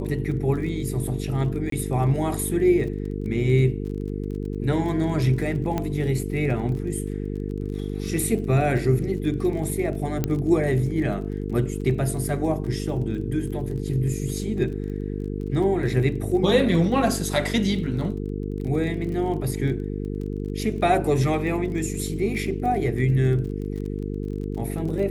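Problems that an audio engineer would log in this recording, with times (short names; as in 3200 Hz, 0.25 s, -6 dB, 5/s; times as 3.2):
buzz 50 Hz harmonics 9 -29 dBFS
crackle 27/s -33 dBFS
1.7–1.72 gap 23 ms
5.78 pop -13 dBFS
10.24 pop -10 dBFS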